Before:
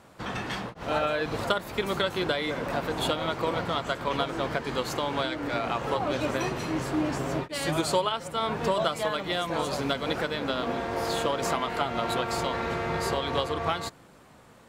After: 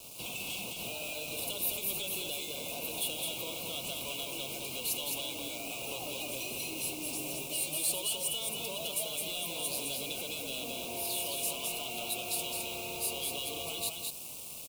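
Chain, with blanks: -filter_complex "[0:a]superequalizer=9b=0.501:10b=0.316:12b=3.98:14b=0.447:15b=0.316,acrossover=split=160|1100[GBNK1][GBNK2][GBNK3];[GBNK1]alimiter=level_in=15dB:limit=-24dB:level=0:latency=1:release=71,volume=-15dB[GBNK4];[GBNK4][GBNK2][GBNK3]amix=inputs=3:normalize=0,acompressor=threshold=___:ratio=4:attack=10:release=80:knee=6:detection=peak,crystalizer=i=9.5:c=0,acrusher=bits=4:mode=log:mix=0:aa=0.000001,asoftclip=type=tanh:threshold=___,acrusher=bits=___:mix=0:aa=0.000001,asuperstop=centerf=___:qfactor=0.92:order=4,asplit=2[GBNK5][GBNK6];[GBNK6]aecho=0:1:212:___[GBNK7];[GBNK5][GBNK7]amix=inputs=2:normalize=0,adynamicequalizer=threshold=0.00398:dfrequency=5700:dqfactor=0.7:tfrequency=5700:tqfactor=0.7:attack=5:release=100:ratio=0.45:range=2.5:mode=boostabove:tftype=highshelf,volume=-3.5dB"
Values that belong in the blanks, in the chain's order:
-41dB, -26.5dB, 6, 1800, 0.668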